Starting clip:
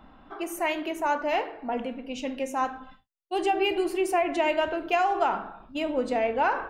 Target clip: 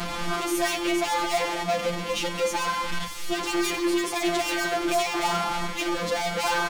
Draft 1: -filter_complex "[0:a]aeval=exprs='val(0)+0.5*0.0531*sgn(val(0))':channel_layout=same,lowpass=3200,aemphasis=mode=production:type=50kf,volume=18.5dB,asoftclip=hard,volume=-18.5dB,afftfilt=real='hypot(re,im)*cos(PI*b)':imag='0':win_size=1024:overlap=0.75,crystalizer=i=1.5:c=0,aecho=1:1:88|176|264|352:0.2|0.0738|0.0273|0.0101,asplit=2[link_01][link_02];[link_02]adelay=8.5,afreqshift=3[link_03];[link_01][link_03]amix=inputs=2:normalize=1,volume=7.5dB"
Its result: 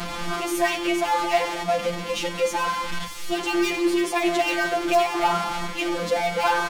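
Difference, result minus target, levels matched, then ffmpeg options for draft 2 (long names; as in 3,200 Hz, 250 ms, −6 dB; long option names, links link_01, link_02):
gain into a clipping stage and back: distortion −10 dB
-filter_complex "[0:a]aeval=exprs='val(0)+0.5*0.0531*sgn(val(0))':channel_layout=same,lowpass=3200,aemphasis=mode=production:type=50kf,volume=25.5dB,asoftclip=hard,volume=-25.5dB,afftfilt=real='hypot(re,im)*cos(PI*b)':imag='0':win_size=1024:overlap=0.75,crystalizer=i=1.5:c=0,aecho=1:1:88|176|264|352:0.2|0.0738|0.0273|0.0101,asplit=2[link_01][link_02];[link_02]adelay=8.5,afreqshift=3[link_03];[link_01][link_03]amix=inputs=2:normalize=1,volume=7.5dB"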